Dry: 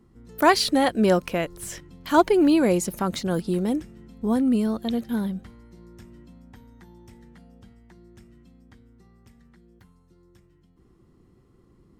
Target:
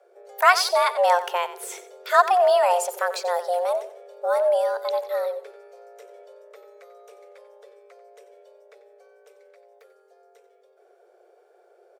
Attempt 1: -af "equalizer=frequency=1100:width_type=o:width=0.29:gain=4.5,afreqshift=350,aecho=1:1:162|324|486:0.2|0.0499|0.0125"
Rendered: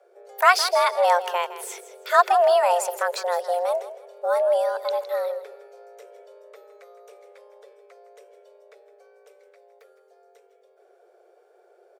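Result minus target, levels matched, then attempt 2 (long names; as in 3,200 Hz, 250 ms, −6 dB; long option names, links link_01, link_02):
echo 71 ms late
-af "equalizer=frequency=1100:width_type=o:width=0.29:gain=4.5,afreqshift=350,aecho=1:1:91|182|273:0.2|0.0499|0.0125"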